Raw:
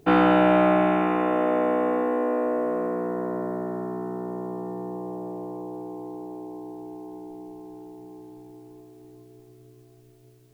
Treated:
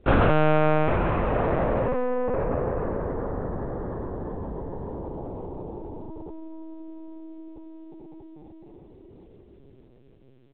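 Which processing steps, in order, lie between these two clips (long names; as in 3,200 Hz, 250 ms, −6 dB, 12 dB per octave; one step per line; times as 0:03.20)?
echo with shifted repeats 416 ms, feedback 44%, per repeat −36 Hz, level −19.5 dB
convolution reverb RT60 1.7 s, pre-delay 48 ms, DRR 11.5 dB
linear-prediction vocoder at 8 kHz pitch kept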